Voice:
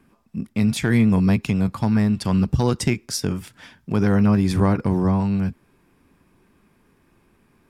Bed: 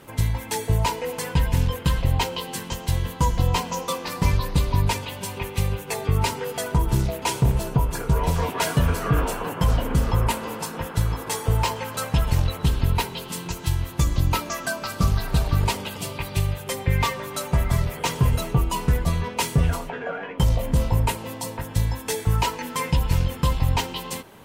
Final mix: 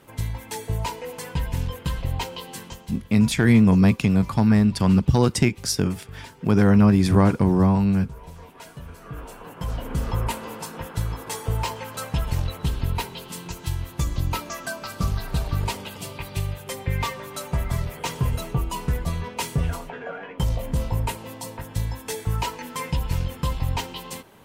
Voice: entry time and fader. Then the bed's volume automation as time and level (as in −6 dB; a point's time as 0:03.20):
2.55 s, +1.5 dB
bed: 0:02.63 −5.5 dB
0:03.09 −19.5 dB
0:08.85 −19.5 dB
0:10.08 −4 dB